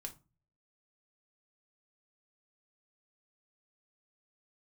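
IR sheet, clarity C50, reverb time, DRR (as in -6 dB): 15.0 dB, 0.30 s, 3.5 dB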